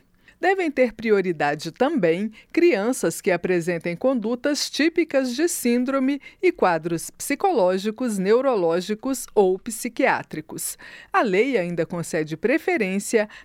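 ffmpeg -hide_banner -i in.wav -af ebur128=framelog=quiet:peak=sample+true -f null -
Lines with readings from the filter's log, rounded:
Integrated loudness:
  I:         -22.3 LUFS
  Threshold: -32.4 LUFS
Loudness range:
  LRA:         1.5 LU
  Threshold: -42.4 LUFS
  LRA low:   -23.3 LUFS
  LRA high:  -21.8 LUFS
Sample peak:
  Peak:       -6.4 dBFS
True peak:
  Peak:       -6.4 dBFS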